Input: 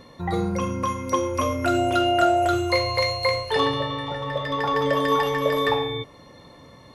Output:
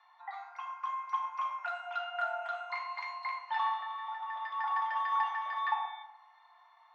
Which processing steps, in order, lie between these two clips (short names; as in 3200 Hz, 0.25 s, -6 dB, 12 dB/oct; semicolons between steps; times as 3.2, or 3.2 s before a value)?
steep high-pass 730 Hz 96 dB/oct; tape spacing loss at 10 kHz 37 dB; FDN reverb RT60 0.92 s, high-frequency decay 0.3×, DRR 1.5 dB; gain -6 dB